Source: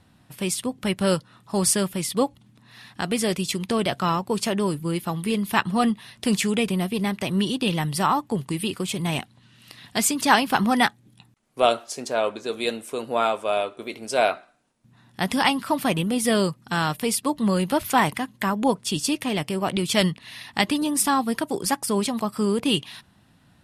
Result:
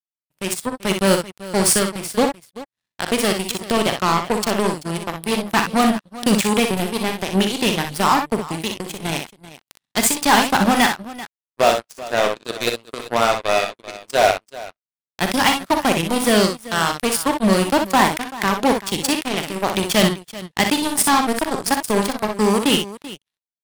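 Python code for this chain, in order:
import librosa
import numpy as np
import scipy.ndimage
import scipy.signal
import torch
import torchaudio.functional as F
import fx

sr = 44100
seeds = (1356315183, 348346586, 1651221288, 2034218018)

y = np.clip(x, -10.0 ** (-16.5 / 20.0), 10.0 ** (-16.5 / 20.0))
y = fx.power_curve(y, sr, exponent=3.0)
y = fx.echo_multitap(y, sr, ms=(42, 61, 386), db=(-11.0, -6.5, -16.5))
y = F.gain(torch.from_numpy(y), 7.5).numpy()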